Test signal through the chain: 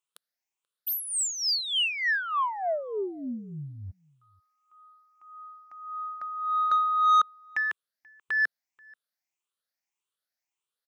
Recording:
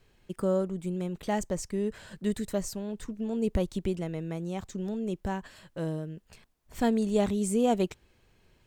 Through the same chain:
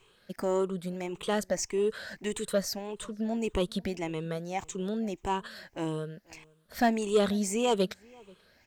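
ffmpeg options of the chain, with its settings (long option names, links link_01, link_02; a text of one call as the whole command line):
ffmpeg -i in.wav -filter_complex "[0:a]afftfilt=real='re*pow(10,12/40*sin(2*PI*(0.68*log(max(b,1)*sr/1024/100)/log(2)-(1.7)*(pts-256)/sr)))':imag='im*pow(10,12/40*sin(2*PI*(0.68*log(max(b,1)*sr/1024/100)/log(2)-(1.7)*(pts-256)/sr)))':win_size=1024:overlap=0.75,asplit=2[link_01][link_02];[link_02]highpass=frequency=720:poles=1,volume=14dB,asoftclip=type=tanh:threshold=-10dB[link_03];[link_01][link_03]amix=inputs=2:normalize=0,lowpass=frequency=7300:poles=1,volume=-6dB,asplit=2[link_04][link_05];[link_05]adelay=484,volume=-26dB,highshelf=frequency=4000:gain=-10.9[link_06];[link_04][link_06]amix=inputs=2:normalize=0,volume=-3.5dB" out.wav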